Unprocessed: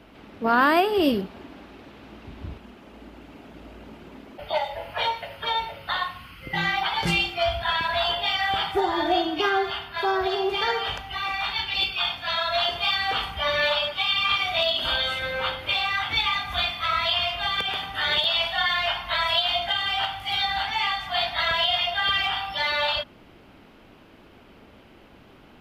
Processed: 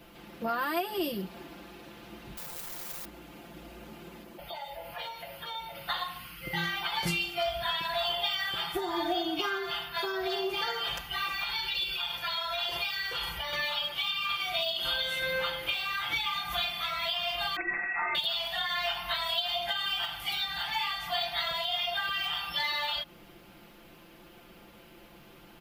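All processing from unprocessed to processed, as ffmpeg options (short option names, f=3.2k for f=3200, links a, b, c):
-filter_complex "[0:a]asettb=1/sr,asplit=3[a][b][c];[a]atrim=end=2.374[d];[b]atrim=start=2.37:end=3.05,asetpts=PTS-STARTPTS,afade=t=in:d=0.004:c=qsin,afade=t=out:st=0.676:d=0.004:c=qsin,lowshelf=f=390:g=11,acompressor=threshold=-33dB:ratio=3:attack=3.2:release=140:knee=1:detection=peak,aeval=exprs='(mod(100*val(0)+1,2)-1)/100':c=same[e];[c]atrim=start=3.046[f];[d][e]acrossfade=d=0.004:c1=hsin:c2=qsin[g];[g][f]acrossfade=d=0.004:c1=qsin:c2=hsin,asettb=1/sr,asplit=3[h][i][j];[h]atrim=end=4.234[k];[i]atrim=start=4.23:end=5.75,asetpts=PTS-STARTPTS,afade=t=in:d=0.004:c=qsin,afade=t=out:st=1.516:d=0.004:c=qsin,equalizer=f=3.2k:w=0.31:g=-3,acompressor=threshold=-38dB:ratio=2.5:attack=3.2:release=140:knee=1:detection=peak[l];[j]atrim=start=5.746[m];[k][l]acrossfade=d=0.004:c1=hsin:c2=qsin[n];[n][m]acrossfade=d=0.004:c1=qsin:c2=hsin,asettb=1/sr,asplit=3[o][p][q];[o]atrim=end=11.434[r];[p]atrim=start=11.43:end=13.53,asetpts=PTS-STARTPTS,afade=t=in:d=0.004:c=qsin,afade=t=out:st=2.096:d=0.004:c=qsin,aecho=1:1:2.1:0.46,atrim=end_sample=92610,acompressor=threshold=-27dB:ratio=6:attack=3.2:release=140:knee=1:detection=peak[s];[q]atrim=start=13.526[t];[r][s]acrossfade=d=0.004:c1=hsin:c2=qsin[u];[u][t]acrossfade=d=0.004:c1=qsin:c2=hsin,asettb=1/sr,asplit=3[v][w][x];[v]atrim=end=17.564[y];[w]atrim=start=17.56:end=18.15,asetpts=PTS-STARTPTS,afade=t=in:d=0.004:c=qsin,afade=t=out:st=0.586:d=0.004:c=qsin,equalizer=f=690:t=o:w=0.33:g=12,lowpass=f=2.3k:t=q:w=0.5098,lowpass=f=2.3k:t=q:w=0.6013,lowpass=f=2.3k:t=q:w=0.9,lowpass=f=2.3k:t=q:w=2.563,afreqshift=-2700[z];[x]atrim=start=18.146[aa];[y][z]acrossfade=d=0.004:c1=hsin:c2=qsin[ab];[ab][aa]acrossfade=d=0.004:c1=qsin:c2=hsin,aemphasis=mode=production:type=50fm,acompressor=threshold=-26dB:ratio=6,aecho=1:1:5.8:0.87,volume=-5dB"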